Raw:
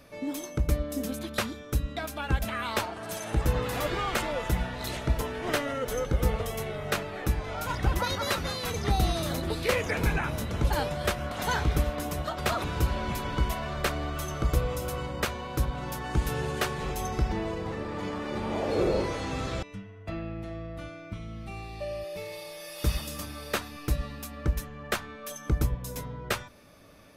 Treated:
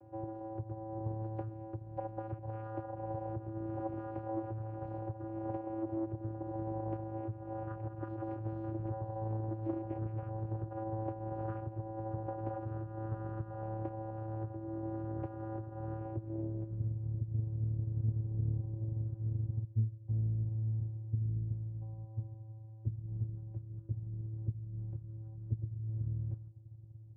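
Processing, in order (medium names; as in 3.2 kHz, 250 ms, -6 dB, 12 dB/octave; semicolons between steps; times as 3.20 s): compression 6:1, threshold -33 dBFS, peak gain reduction 13.5 dB; low-pass sweep 700 Hz -> 190 Hz, 15.97–16.93 s; frequency shift -49 Hz; vocoder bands 8, square 110 Hz; loudspeaker Doppler distortion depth 0.46 ms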